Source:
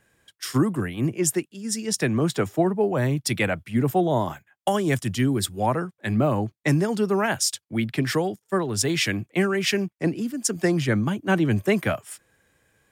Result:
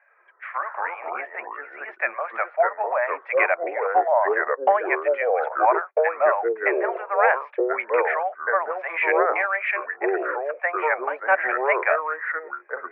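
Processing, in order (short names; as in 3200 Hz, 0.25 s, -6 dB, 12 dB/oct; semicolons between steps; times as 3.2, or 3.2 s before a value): Chebyshev band-pass 570–2400 Hz, order 5; echoes that change speed 83 ms, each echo -4 st, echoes 2; gain +6.5 dB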